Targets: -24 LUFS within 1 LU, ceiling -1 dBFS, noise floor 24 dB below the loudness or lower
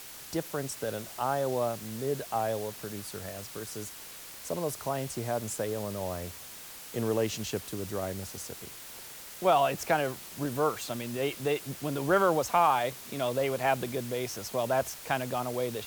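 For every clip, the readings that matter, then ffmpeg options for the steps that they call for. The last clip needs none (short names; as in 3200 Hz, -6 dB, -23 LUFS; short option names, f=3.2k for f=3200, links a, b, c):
noise floor -46 dBFS; noise floor target -56 dBFS; loudness -31.5 LUFS; peak -13.0 dBFS; loudness target -24.0 LUFS
-> -af "afftdn=nr=10:nf=-46"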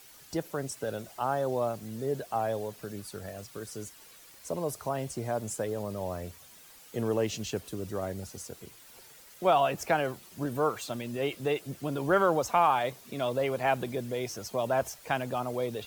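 noise floor -54 dBFS; noise floor target -56 dBFS
-> -af "afftdn=nr=6:nf=-54"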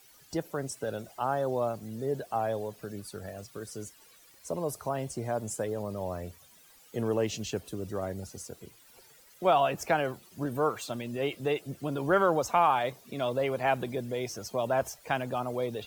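noise floor -58 dBFS; loudness -31.5 LUFS; peak -13.5 dBFS; loudness target -24.0 LUFS
-> -af "volume=7.5dB"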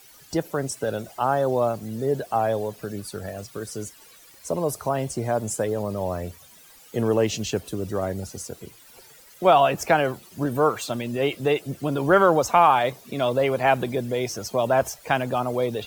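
loudness -24.0 LUFS; peak -6.0 dBFS; noise floor -50 dBFS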